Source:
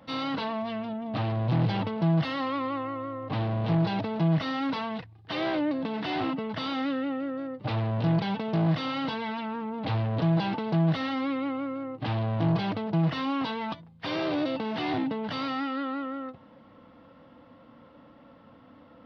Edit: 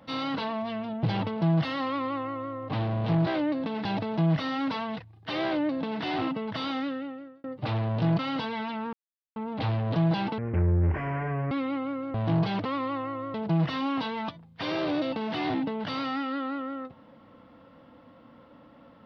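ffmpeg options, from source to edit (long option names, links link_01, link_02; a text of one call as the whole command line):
ffmpeg -i in.wav -filter_complex "[0:a]asplit=12[link_01][link_02][link_03][link_04][link_05][link_06][link_07][link_08][link_09][link_10][link_11][link_12];[link_01]atrim=end=1.032[link_13];[link_02]atrim=start=1.628:end=3.872[link_14];[link_03]atrim=start=5.458:end=6.042[link_15];[link_04]atrim=start=3.868:end=7.46,asetpts=PTS-STARTPTS,afade=type=out:start_time=2.842:duration=0.75[link_16];[link_05]atrim=start=7.46:end=8.212,asetpts=PTS-STARTPTS,afade=type=in:duration=0.004:curve=hsin[link_17];[link_06]atrim=start=8.878:end=9.62,asetpts=PTS-STARTPTS,afade=type=out:start_time=0.738:duration=0.004:curve=hsin,apad=pad_dur=0.43[link_18];[link_07]atrim=start=9.62:end=10.644,asetpts=PTS-STARTPTS,afade=type=in:duration=0.004:curve=hsin[link_19];[link_08]atrim=start=10.64:end=11.24,asetpts=PTS-STARTPTS,asetrate=23373,aresample=44100[link_20];[link_09]atrim=start=11.236:end=11.872[link_21];[link_10]atrim=start=12.268:end=12.782[link_22];[link_11]atrim=start=2.458:end=3.152[link_23];[link_12]atrim=start=12.778[link_24];[link_13][link_14]acrossfade=duration=0.004:curve1=hsin:curve2=hsin[link_25];[link_25][link_15]acrossfade=duration=0.004:curve1=hsin:curve2=hsin[link_26];[link_16][link_17]concat=n=2:v=0:a=1[link_27];[link_26][link_27]acrossfade=duration=0.004:curve1=hsin:curve2=hsin[link_28];[link_18][link_19]concat=n=2:v=0:a=1[link_29];[link_28][link_29]acrossfade=duration=0.004:curve1=hsin:curve2=hsin[link_30];[link_30][link_20]acrossfade=duration=0.004:curve1=hsin:curve2=hsin[link_31];[link_31][link_21]acrossfade=duration=0.004:curve1=hsin:curve2=hsin[link_32];[link_32][link_22]acrossfade=duration=0.004:curve1=hsin:curve2=hsin[link_33];[link_33][link_23]acrossfade=duration=0.004:curve1=hsin:curve2=hsin[link_34];[link_34][link_24]acrossfade=duration=0.004:curve1=hsin:curve2=hsin" out.wav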